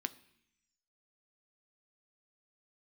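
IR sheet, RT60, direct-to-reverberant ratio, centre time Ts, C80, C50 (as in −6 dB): 0.70 s, 11.0 dB, 4 ms, 21.0 dB, 18.5 dB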